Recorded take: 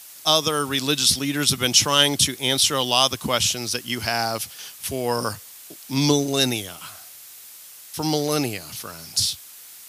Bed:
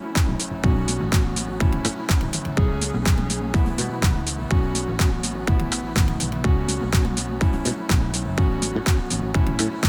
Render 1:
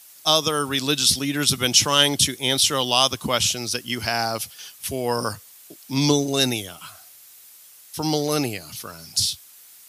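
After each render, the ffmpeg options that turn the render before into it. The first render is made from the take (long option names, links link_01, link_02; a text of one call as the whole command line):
ffmpeg -i in.wav -af "afftdn=noise_reduction=6:noise_floor=-43" out.wav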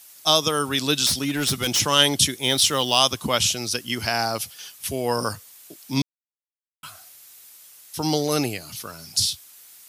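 ffmpeg -i in.wav -filter_complex "[0:a]asettb=1/sr,asplit=3[link_01][link_02][link_03];[link_01]atrim=end=1.064[link_04];[link_02]atrim=start=1.06:end=1.8,asetpts=PTS-STARTPTS,afade=type=in:duration=0.004:curve=qsin,afade=type=out:start_time=0.736:duration=0.004:curve=qsin,asoftclip=type=hard:threshold=-18dB[link_05];[link_03]atrim=start=1.796[link_06];[link_04][link_05]acrossfade=duration=0.004:curve1=hsin:curve2=qsin[link_07];[link_07][link_06]acrossfade=duration=0.004:curve1=qsin:curve2=hsin,asplit=3[link_08][link_09][link_10];[link_08]afade=type=out:start_time=2.38:duration=0.02[link_11];[link_09]acrusher=bits=6:mode=log:mix=0:aa=0.000001,afade=type=in:start_time=2.38:duration=0.02,afade=type=out:start_time=2.98:duration=0.02[link_12];[link_10]afade=type=in:start_time=2.98:duration=0.02[link_13];[link_11][link_12][link_13]amix=inputs=3:normalize=0,asplit=3[link_14][link_15][link_16];[link_14]atrim=end=6.02,asetpts=PTS-STARTPTS,afade=type=out:start_time=6.016:duration=0.004:curve=hsin[link_17];[link_15]atrim=start=6.02:end=6.83,asetpts=PTS-STARTPTS,volume=0[link_18];[link_16]atrim=start=6.83,asetpts=PTS-STARTPTS,afade=type=in:duration=0.004:curve=hsin[link_19];[link_17][link_18][link_19]concat=n=3:v=0:a=1" out.wav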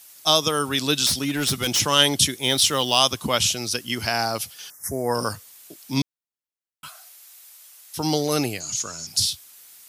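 ffmpeg -i in.wav -filter_complex "[0:a]asettb=1/sr,asplit=3[link_01][link_02][link_03];[link_01]atrim=end=4.704[link_04];[link_02]atrim=start=4.7:end=5.15,asetpts=PTS-STARTPTS,afade=type=in:duration=0.004:curve=qsin,afade=type=out:start_time=0.446:duration=0.004:curve=qsin,asuperstop=centerf=3300:order=12:qfactor=0.99[link_05];[link_03]atrim=start=5.146[link_06];[link_04][link_05]acrossfade=duration=0.004:curve1=hsin:curve2=qsin[link_07];[link_07][link_06]acrossfade=duration=0.004:curve1=qsin:curve2=hsin,asettb=1/sr,asplit=3[link_08][link_09][link_10];[link_08]atrim=end=6.884[link_11];[link_09]atrim=start=6.88:end=7.96,asetpts=PTS-STARTPTS,afade=type=in:duration=0.004:curve=qsin,afade=type=out:start_time=1.076:duration=0.004:curve=qsin,highpass=frequency=530:width=0.5412,highpass=frequency=530:width=1.3066[link_12];[link_10]atrim=start=7.956[link_13];[link_11][link_12]acrossfade=duration=0.004:curve1=hsin:curve2=qsin[link_14];[link_14][link_13]acrossfade=duration=0.004:curve1=qsin:curve2=hsin,asettb=1/sr,asplit=3[link_15][link_16][link_17];[link_15]atrim=end=8.604[link_18];[link_16]atrim=start=8.6:end=9.07,asetpts=PTS-STARTPTS,afade=type=in:duration=0.004:curve=qsin,afade=type=out:start_time=0.466:duration=0.004:curve=qsin,lowpass=frequency=6800:width_type=q:width=15[link_19];[link_17]atrim=start=9.066[link_20];[link_18][link_19]acrossfade=duration=0.004:curve1=hsin:curve2=qsin[link_21];[link_21][link_20]acrossfade=duration=0.004:curve1=qsin:curve2=hsin" out.wav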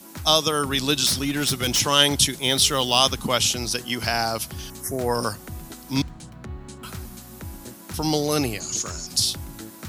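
ffmpeg -i in.wav -i bed.wav -filter_complex "[1:a]volume=-17dB[link_01];[0:a][link_01]amix=inputs=2:normalize=0" out.wav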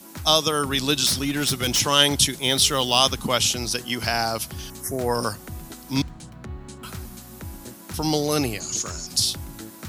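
ffmpeg -i in.wav -af anull out.wav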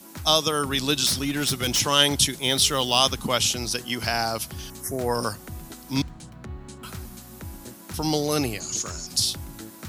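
ffmpeg -i in.wav -af "volume=-1.5dB" out.wav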